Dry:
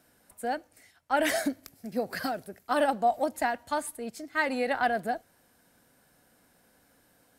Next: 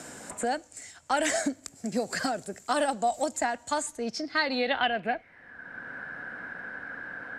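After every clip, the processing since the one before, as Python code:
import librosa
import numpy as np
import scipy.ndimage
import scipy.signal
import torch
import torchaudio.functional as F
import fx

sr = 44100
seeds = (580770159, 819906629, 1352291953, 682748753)

y = fx.filter_sweep_lowpass(x, sr, from_hz=7400.0, to_hz=1600.0, start_s=3.82, end_s=5.59, q=7.9)
y = fx.band_squash(y, sr, depth_pct=70)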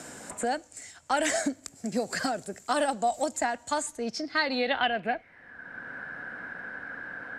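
y = x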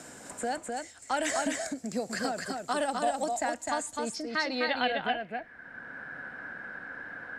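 y = x + 10.0 ** (-3.5 / 20.0) * np.pad(x, (int(255 * sr / 1000.0), 0))[:len(x)]
y = y * 10.0 ** (-3.5 / 20.0)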